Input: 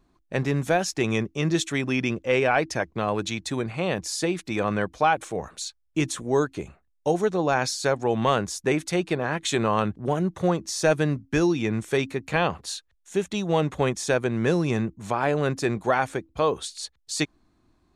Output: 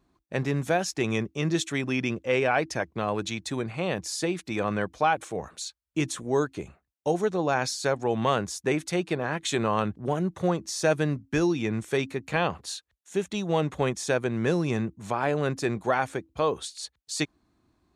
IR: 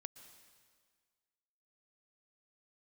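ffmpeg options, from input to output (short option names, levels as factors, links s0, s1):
-af "highpass=48,volume=0.75"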